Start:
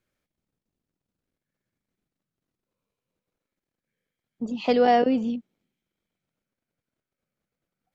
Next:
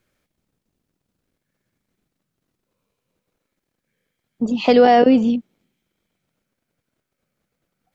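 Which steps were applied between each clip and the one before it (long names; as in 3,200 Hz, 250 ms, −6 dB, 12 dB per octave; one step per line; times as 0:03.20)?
boost into a limiter +12 dB
level −2.5 dB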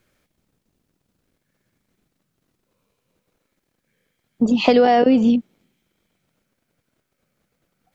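downward compressor 6 to 1, threshold −15 dBFS, peak gain reduction 7.5 dB
level +4.5 dB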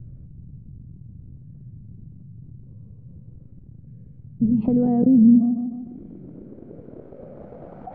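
low-pass filter sweep 120 Hz → 760 Hz, 0:04.46–0:07.84
tape delay 152 ms, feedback 27%, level −14 dB, low-pass 4,700 Hz
envelope flattener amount 50%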